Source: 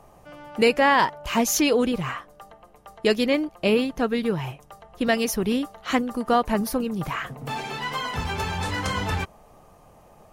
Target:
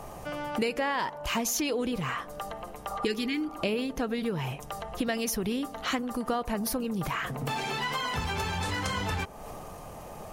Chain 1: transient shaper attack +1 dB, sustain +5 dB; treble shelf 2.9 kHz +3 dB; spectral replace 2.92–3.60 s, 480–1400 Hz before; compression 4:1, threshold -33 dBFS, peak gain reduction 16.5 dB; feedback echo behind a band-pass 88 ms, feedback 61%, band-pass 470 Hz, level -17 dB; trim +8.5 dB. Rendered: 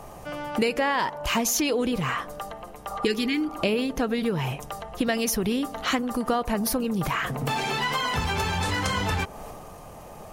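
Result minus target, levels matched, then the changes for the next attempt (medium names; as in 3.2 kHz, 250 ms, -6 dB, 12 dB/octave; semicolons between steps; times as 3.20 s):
compression: peak gain reduction -5 dB
change: compression 4:1, threshold -39.5 dBFS, peak gain reduction 21 dB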